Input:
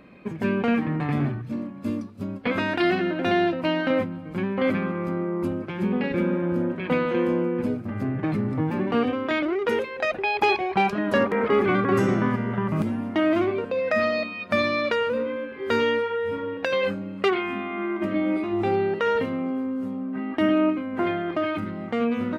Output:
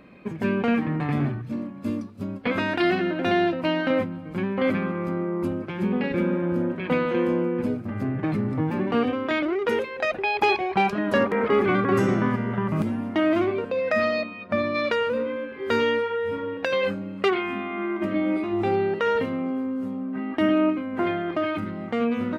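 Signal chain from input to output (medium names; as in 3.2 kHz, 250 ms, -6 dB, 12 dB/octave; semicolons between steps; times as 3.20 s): 14.21–14.74 s: low-pass 1.8 kHz -> 1 kHz 6 dB/octave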